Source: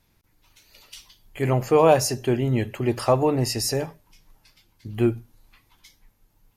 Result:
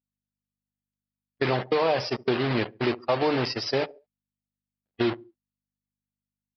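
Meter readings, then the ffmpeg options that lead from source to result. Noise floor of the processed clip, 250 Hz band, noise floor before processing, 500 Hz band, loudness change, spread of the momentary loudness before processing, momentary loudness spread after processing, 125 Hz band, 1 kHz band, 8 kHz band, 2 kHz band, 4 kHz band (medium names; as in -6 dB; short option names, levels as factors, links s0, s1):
under -85 dBFS, -4.0 dB, -66 dBFS, -4.5 dB, -4.5 dB, 11 LU, 5 LU, -8.5 dB, -4.0 dB, under -20 dB, +3.0 dB, 0.0 dB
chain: -af "alimiter=limit=0.178:level=0:latency=1:release=83,acontrast=69,acrusher=bits=3:mix=0:aa=0.000001,agate=range=0.0224:threshold=0.112:ratio=16:detection=peak,aeval=exprs='val(0)+0.00316*(sin(2*PI*50*n/s)+sin(2*PI*2*50*n/s)/2+sin(2*PI*3*50*n/s)/3+sin(2*PI*4*50*n/s)/4+sin(2*PI*5*50*n/s)/5)':c=same,highpass=f=390:p=1,aecho=1:1:70|140|210:0.0891|0.0383|0.0165,acompressor=threshold=0.0398:ratio=2,afftdn=nr=31:nf=-41,aresample=11025,aresample=44100,volume=1.41"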